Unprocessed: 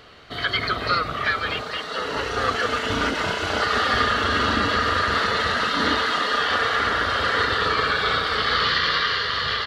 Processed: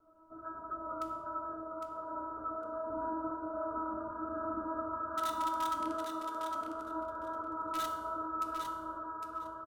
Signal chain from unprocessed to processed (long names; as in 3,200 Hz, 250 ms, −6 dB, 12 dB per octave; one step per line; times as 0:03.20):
0:05.07–0:05.73: tilt shelving filter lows −9 dB, about 710 Hz
Chebyshev low-pass filter 1,500 Hz, order 10
stiff-string resonator 320 Hz, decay 0.51 s, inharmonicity 0.002
in parallel at −6 dB: wrap-around overflow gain 32 dB
on the sum: repeating echo 807 ms, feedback 15%, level −5.5 dB
on a send at −5 dB: convolution reverb RT60 0.85 s, pre-delay 3 ms
on the sum: SBC 128 kbit/s 48,000 Hz